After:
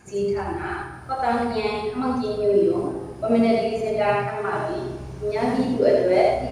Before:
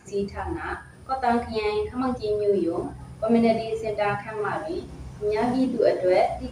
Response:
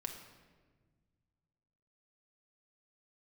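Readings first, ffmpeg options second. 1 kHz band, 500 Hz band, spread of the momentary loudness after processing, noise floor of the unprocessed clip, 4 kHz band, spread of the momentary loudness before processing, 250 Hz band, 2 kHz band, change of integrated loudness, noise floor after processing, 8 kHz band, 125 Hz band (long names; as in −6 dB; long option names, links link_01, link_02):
+2.0 dB, +3.0 dB, 11 LU, −44 dBFS, +2.5 dB, 11 LU, +2.0 dB, +2.5 dB, +2.5 dB, −38 dBFS, can't be measured, +3.0 dB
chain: -filter_complex "[0:a]asplit=2[link_01][link_02];[link_02]adelay=32,volume=-11dB[link_03];[link_01][link_03]amix=inputs=2:normalize=0,asplit=2[link_04][link_05];[1:a]atrim=start_sample=2205,adelay=82[link_06];[link_05][link_06]afir=irnorm=-1:irlink=0,volume=0dB[link_07];[link_04][link_07]amix=inputs=2:normalize=0"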